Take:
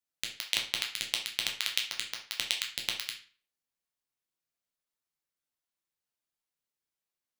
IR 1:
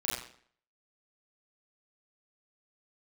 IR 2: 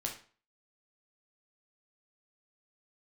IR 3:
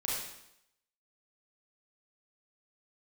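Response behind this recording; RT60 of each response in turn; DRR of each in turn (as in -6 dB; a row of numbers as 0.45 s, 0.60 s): 2; 0.55 s, 0.40 s, 0.80 s; -7.5 dB, 0.0 dB, -6.0 dB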